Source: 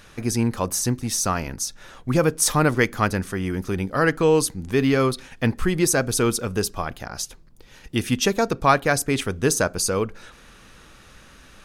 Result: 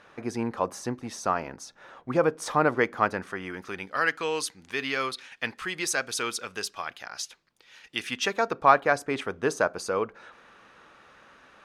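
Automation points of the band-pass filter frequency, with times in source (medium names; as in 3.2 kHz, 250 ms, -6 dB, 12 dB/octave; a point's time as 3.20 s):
band-pass filter, Q 0.75
2.98 s 810 Hz
4.08 s 2.6 kHz
7.95 s 2.6 kHz
8.63 s 940 Hz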